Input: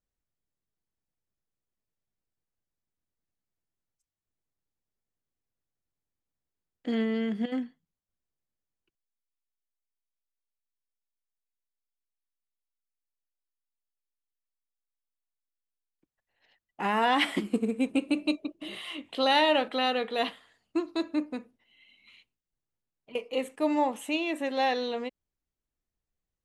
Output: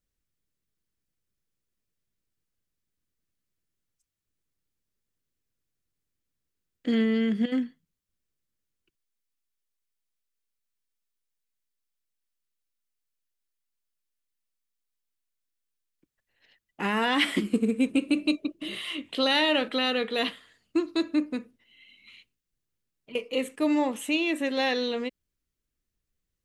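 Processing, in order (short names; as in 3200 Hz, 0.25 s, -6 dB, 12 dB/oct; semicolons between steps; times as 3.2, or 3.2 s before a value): bell 790 Hz -9.5 dB 0.93 oct; in parallel at -1.5 dB: limiter -22 dBFS, peak gain reduction 8 dB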